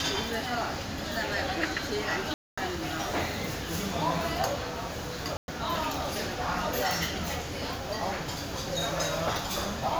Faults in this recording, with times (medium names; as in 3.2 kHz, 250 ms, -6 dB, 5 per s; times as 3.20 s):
2.34–2.58 s: dropout 235 ms
5.37–5.48 s: dropout 111 ms